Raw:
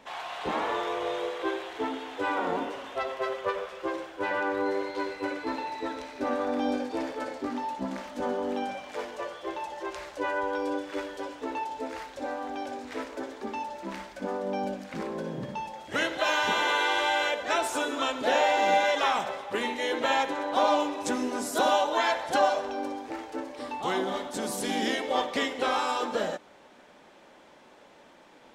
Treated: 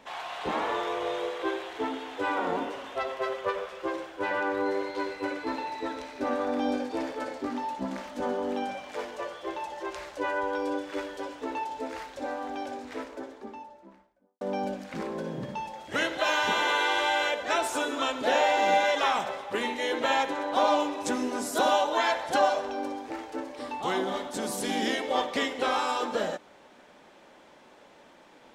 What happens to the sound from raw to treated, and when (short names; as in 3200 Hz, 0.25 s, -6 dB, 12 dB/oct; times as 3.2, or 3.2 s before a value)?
12.55–14.41 studio fade out